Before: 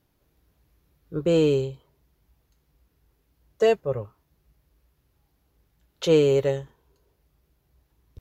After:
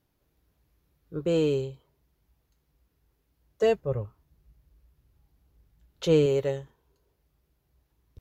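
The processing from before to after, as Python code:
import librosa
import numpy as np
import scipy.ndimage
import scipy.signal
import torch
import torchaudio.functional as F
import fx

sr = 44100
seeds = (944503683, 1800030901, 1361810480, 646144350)

y = fx.low_shelf(x, sr, hz=170.0, db=10.0, at=(3.63, 6.26))
y = F.gain(torch.from_numpy(y), -4.5).numpy()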